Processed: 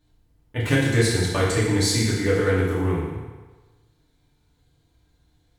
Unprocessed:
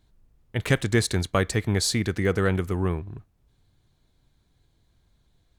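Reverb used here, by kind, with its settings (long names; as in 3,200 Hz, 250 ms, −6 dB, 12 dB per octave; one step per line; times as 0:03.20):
feedback delay network reverb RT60 1.3 s, low-frequency decay 0.8×, high-frequency decay 0.9×, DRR −7.5 dB
level −5 dB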